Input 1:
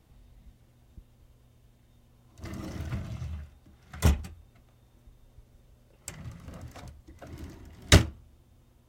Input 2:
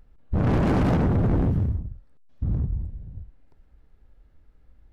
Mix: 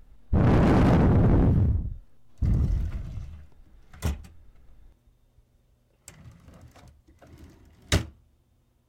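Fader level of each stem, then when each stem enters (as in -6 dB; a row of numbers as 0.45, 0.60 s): -6.0, +1.5 dB; 0.00, 0.00 s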